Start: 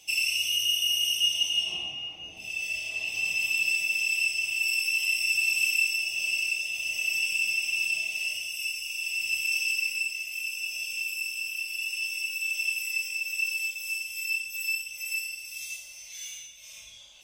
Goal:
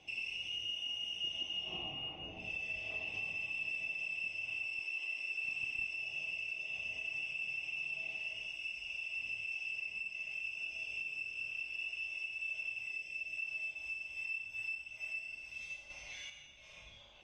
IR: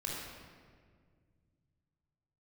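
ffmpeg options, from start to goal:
-filter_complex "[0:a]asoftclip=type=hard:threshold=-18.5dB,asettb=1/sr,asplit=3[link_01][link_02][link_03];[link_01]atrim=end=4.834[link_04];[link_02]atrim=start=4.83:end=5.44,asetpts=PTS-STARTPTS,afade=type=in:duration=0.004:curve=qsin,afade=type=out:start_time=0.606:duration=0.004:curve=qsin,highpass=250[link_05];[link_03]atrim=start=5.436[link_06];[link_04][link_05]acrossfade=duration=0.004:curve1=hsin:curve2=qsin[link_07];[link_07][link_06]acrossfade=duration=0.004:curve1=qsin:curve2=hsin,asettb=1/sr,asplit=3[link_08][link_09][link_10];[link_08]atrim=end=12.924[link_11];[link_09]atrim=start=12.92:end=13.37,asetpts=PTS-STARTPTS,afade=type=in:duration=0.004:curve=qsin,afade=type=out:start_time=0.446:duration=0.004:curve=qsin,equalizer=frequency=1100:width=1.5:gain=-13.5[link_12];[link_10]atrim=start=13.366[link_13];[link_11][link_12]acrossfade=duration=0.004:curve1=hsin:curve2=qsin[link_14];[link_14][link_13]acrossfade=duration=0.004:curve1=qsin:curve2=hsin,asettb=1/sr,asplit=3[link_15][link_16][link_17];[link_15]atrim=end=15.904[link_18];[link_16]atrim=start=15.9:end=16.3,asetpts=PTS-STARTPTS,afade=type=in:duration=0.004:curve=qsin,afade=type=out:start_time=0.396:duration=0.004:curve=qsin,acontrast=59[link_19];[link_17]atrim=start=16.296[link_20];[link_18][link_19]acrossfade=duration=0.004:curve1=hsin:curve2=qsin[link_21];[link_21][link_20]acrossfade=duration=0.004:curve1=qsin:curve2=hsin,alimiter=level_in=2.5dB:limit=-24dB:level=0:latency=1:release=319,volume=-2.5dB,lowpass=2600,highshelf=frequency=2000:gain=-9,volume=4dB"

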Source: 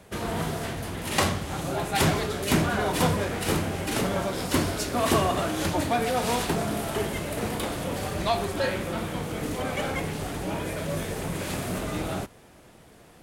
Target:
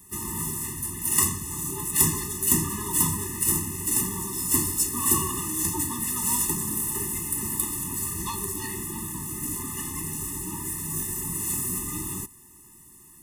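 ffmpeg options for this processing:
ffmpeg -i in.wav -filter_complex "[0:a]asplit=2[link_01][link_02];[link_02]asetrate=66075,aresample=44100,atempo=0.66742,volume=-17dB[link_03];[link_01][link_03]amix=inputs=2:normalize=0,aexciter=amount=13.2:drive=1.1:freq=6100,afftfilt=real='re*eq(mod(floor(b*sr/1024/420),2),0)':imag='im*eq(mod(floor(b*sr/1024/420),2),0)':win_size=1024:overlap=0.75,volume=-4dB" out.wav

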